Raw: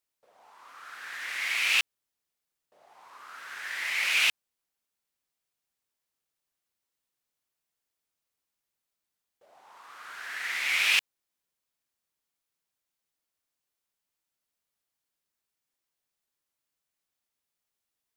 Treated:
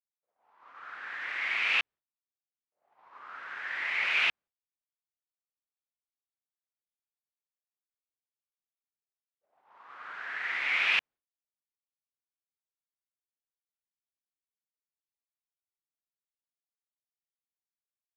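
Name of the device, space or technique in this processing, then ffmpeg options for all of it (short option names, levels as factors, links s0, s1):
hearing-loss simulation: -af "lowpass=2200,agate=range=0.0224:threshold=0.00447:ratio=3:detection=peak,volume=1.26"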